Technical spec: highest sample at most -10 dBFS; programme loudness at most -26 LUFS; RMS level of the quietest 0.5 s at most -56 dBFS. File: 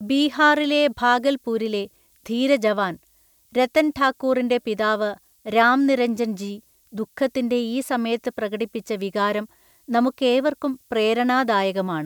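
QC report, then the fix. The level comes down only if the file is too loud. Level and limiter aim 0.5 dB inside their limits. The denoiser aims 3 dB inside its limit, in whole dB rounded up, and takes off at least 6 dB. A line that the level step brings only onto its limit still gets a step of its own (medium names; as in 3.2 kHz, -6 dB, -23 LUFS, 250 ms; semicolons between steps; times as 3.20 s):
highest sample -4.5 dBFS: fail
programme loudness -21.5 LUFS: fail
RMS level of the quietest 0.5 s -59 dBFS: pass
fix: trim -5 dB; peak limiter -10.5 dBFS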